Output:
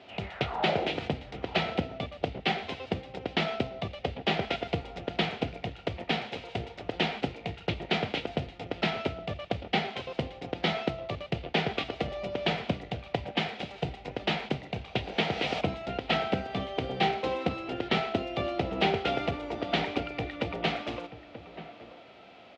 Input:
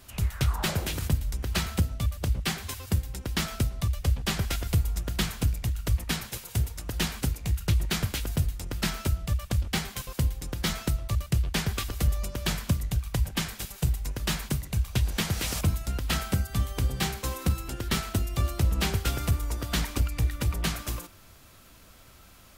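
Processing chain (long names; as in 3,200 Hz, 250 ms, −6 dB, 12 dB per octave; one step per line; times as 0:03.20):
loudspeaker in its box 270–3,300 Hz, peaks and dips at 460 Hz +4 dB, 720 Hz +8 dB, 1,100 Hz −10 dB, 1,600 Hz −8 dB
slap from a distant wall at 160 metres, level −13 dB
harmonic and percussive parts rebalanced harmonic +3 dB
level +4.5 dB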